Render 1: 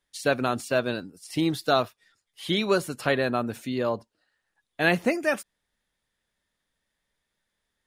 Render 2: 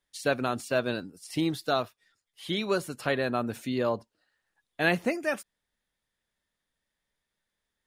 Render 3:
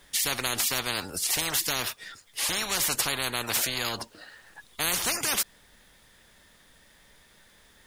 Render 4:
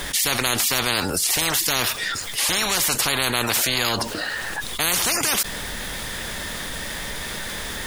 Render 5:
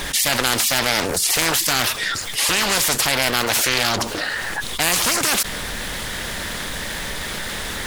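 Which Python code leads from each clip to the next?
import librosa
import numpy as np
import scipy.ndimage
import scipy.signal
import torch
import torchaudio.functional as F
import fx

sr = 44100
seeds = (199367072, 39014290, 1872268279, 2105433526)

y1 = fx.rider(x, sr, range_db=3, speed_s=0.5)
y1 = y1 * 10.0 ** (-3.0 / 20.0)
y2 = fx.spectral_comp(y1, sr, ratio=10.0)
y3 = fx.env_flatten(y2, sr, amount_pct=70)
y3 = y3 * 10.0 ** (3.5 / 20.0)
y4 = fx.doppler_dist(y3, sr, depth_ms=0.77)
y4 = y4 * 10.0 ** (3.0 / 20.0)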